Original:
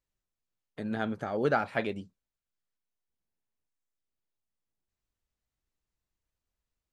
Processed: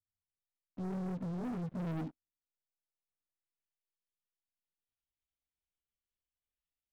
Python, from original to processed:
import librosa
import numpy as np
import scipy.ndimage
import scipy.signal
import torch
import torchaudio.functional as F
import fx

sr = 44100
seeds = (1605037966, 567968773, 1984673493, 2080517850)

y = fx.pitch_glide(x, sr, semitones=11.5, runs='ending unshifted')
y = fx.filter_sweep_lowpass(y, sr, from_hz=140.0, to_hz=3200.0, start_s=1.72, end_s=3.75, q=2.9)
y = fx.leveller(y, sr, passes=5)
y = y * librosa.db_to_amplitude(-3.5)